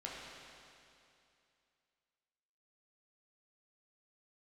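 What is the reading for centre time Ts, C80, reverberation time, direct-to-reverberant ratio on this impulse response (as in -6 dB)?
0.143 s, 0.0 dB, 2.6 s, -5.0 dB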